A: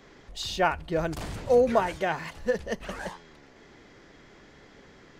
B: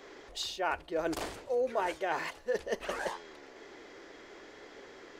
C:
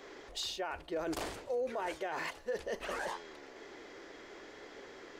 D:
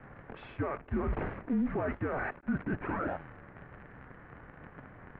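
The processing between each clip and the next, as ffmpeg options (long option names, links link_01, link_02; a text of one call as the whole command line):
ffmpeg -i in.wav -af "lowshelf=frequency=250:width_type=q:width=1.5:gain=-12,areverse,acompressor=threshold=-32dB:ratio=5,areverse,volume=2dB" out.wav
ffmpeg -i in.wav -af "alimiter=level_in=4.5dB:limit=-24dB:level=0:latency=1:release=25,volume=-4.5dB" out.wav
ffmpeg -i in.wav -af "lowshelf=frequency=120:gain=7.5,acrusher=bits=8:dc=4:mix=0:aa=0.000001,highpass=frequency=160:width_type=q:width=0.5412,highpass=frequency=160:width_type=q:width=1.307,lowpass=frequency=2300:width_type=q:width=0.5176,lowpass=frequency=2300:width_type=q:width=0.7071,lowpass=frequency=2300:width_type=q:width=1.932,afreqshift=-270,volume=4.5dB" out.wav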